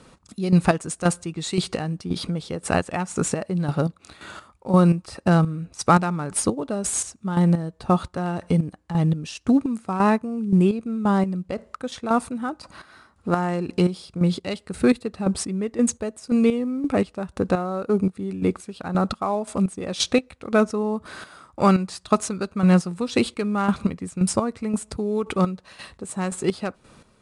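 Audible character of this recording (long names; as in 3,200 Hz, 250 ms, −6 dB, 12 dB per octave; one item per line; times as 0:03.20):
chopped level 1.9 Hz, depth 65%, duty 35%
IMA ADPCM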